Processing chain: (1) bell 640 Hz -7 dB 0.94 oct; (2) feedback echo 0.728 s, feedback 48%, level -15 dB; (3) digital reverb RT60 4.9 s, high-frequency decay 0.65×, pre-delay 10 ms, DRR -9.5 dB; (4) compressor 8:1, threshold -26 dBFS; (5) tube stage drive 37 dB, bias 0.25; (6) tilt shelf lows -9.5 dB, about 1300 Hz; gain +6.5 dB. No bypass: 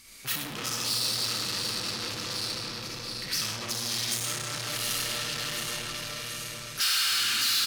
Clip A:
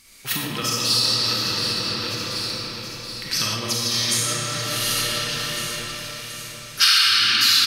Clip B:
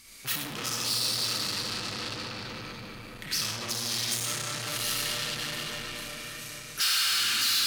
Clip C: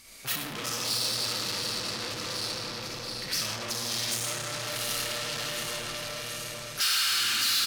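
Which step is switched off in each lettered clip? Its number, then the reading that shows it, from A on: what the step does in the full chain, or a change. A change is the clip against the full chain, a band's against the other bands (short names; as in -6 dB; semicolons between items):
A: 5, crest factor change +6.0 dB; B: 2, momentary loudness spread change +4 LU; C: 1, 500 Hz band +3.5 dB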